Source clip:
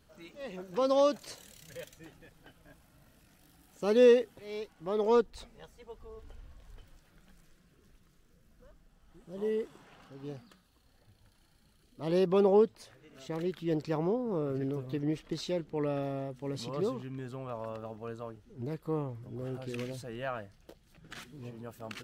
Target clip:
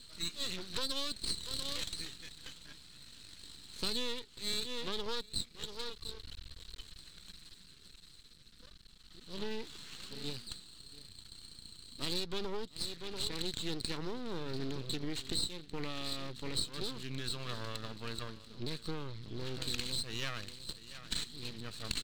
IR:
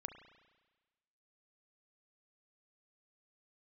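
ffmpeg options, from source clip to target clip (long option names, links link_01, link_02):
-af "lowpass=frequency=4100:width_type=q:width=9.9,highshelf=frequency=2100:gain=10,aecho=1:1:689:0.133,acompressor=threshold=-33dB:ratio=10,aeval=exprs='max(val(0),0)':channel_layout=same,equalizer=frequency=680:width_type=o:width=1.1:gain=-11.5,volume=4.5dB"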